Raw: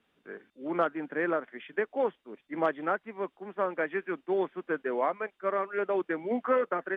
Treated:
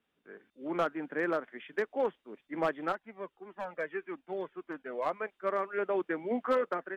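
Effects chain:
hard clipping −19.5 dBFS, distortion −22 dB
automatic gain control gain up to 6 dB
0:02.92–0:05.06: flanger whose copies keep moving one way falling 1.7 Hz
level −8 dB

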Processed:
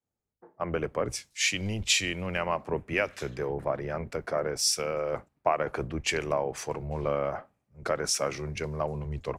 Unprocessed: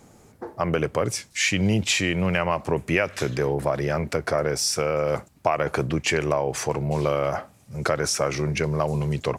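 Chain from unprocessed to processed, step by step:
sub-octave generator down 1 octave, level −6 dB
bass and treble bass −4 dB, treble −3 dB
multiband upward and downward expander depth 100%
level −6 dB

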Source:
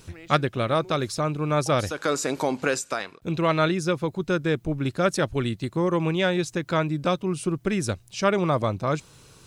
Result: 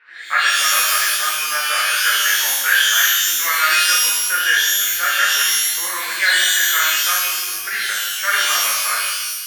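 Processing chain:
low-pass filter 2,300 Hz 24 dB per octave
in parallel at +2.5 dB: brickwall limiter −15 dBFS, peak gain reduction 8 dB
on the sum: high-pass with resonance 1,700 Hz, resonance Q 6.1
reverb with rising layers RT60 1.1 s, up +12 semitones, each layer −2 dB, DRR −7 dB
level −8 dB

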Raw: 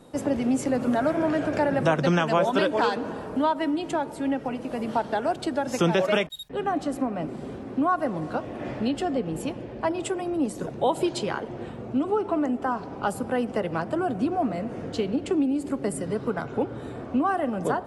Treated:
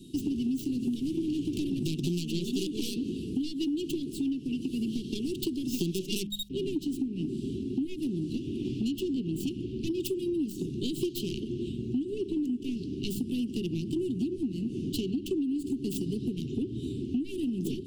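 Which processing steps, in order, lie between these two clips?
stylus tracing distortion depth 0.26 ms
Chebyshev band-stop filter 380–2,800 Hz, order 5
parametric band 1,400 Hz +13 dB 0.51 octaves
hum removal 51.1 Hz, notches 4
downward compressor 6 to 1, threshold −33 dBFS, peak gain reduction 13 dB
level +5 dB

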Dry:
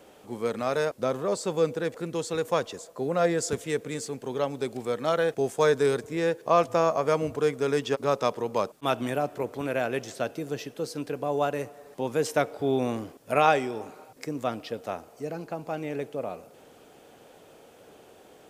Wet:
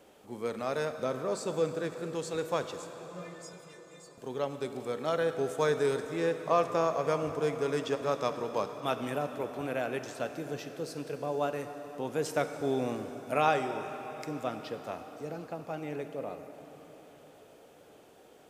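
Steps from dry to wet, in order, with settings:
0:02.92–0:04.18: stiff-string resonator 180 Hz, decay 0.41 s, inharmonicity 0.008
dense smooth reverb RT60 4.9 s, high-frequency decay 0.85×, DRR 7.5 dB
level −5.5 dB

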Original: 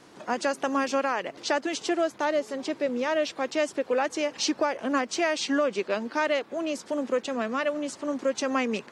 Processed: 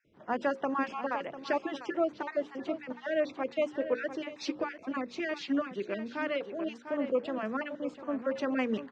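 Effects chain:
time-frequency cells dropped at random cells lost 27%
low-pass filter 2,600 Hz 12 dB per octave
low-shelf EQ 180 Hz +7 dB
mains-hum notches 60/120/180/240/300/360/420/480/540 Hz
single-tap delay 698 ms −10.5 dB
0:04.13–0:06.36: dynamic equaliser 850 Hz, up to −7 dB, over −39 dBFS, Q 1
multiband upward and downward expander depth 40%
level −4 dB

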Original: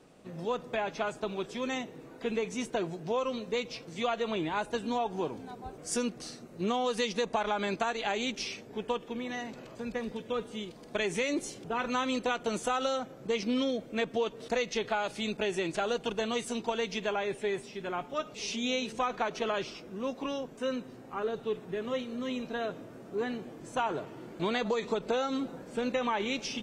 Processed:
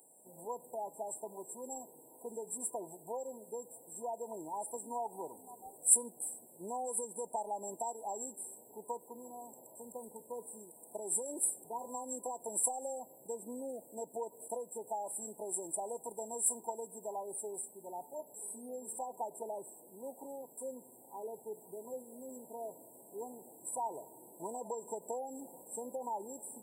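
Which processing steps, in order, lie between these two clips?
tape wow and flutter 23 cents
first difference
brick-wall band-stop 1,000–7,400 Hz
level +13 dB

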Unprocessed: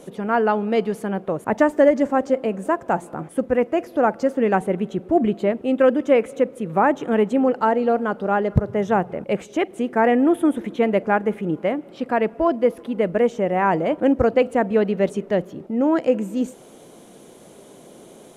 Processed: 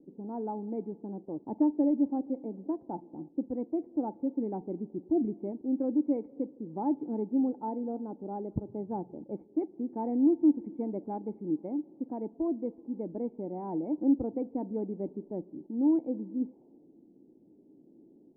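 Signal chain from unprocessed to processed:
formant resonators in series u
low-pass that shuts in the quiet parts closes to 360 Hz, open at −23 dBFS
level −3.5 dB

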